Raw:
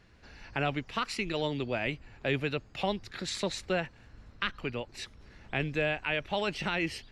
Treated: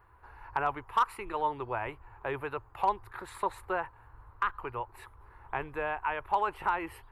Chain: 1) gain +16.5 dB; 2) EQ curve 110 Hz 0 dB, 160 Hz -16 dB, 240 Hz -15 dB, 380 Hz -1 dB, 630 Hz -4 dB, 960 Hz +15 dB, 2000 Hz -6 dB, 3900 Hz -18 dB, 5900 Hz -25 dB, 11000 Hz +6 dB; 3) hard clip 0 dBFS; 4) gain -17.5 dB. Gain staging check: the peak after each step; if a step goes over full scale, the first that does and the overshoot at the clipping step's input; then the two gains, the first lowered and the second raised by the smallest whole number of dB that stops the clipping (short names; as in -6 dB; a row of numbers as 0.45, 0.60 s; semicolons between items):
+1.5, +5.0, 0.0, -17.5 dBFS; step 1, 5.0 dB; step 1 +11.5 dB, step 4 -12.5 dB